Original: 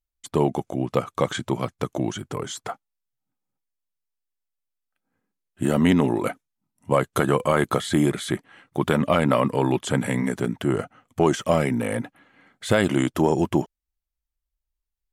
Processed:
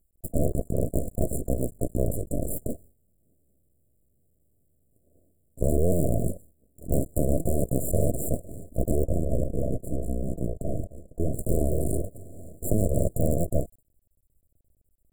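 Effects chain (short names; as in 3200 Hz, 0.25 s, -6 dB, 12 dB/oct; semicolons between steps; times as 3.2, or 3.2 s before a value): cycle switcher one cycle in 3, muted; gate with hold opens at -51 dBFS; 9.05–11.39 three-band isolator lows -13 dB, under 430 Hz, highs -21 dB, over 2400 Hz; full-wave rectifier; brick-wall FIR band-stop 700–7100 Hz; fast leveller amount 50%; gain -1.5 dB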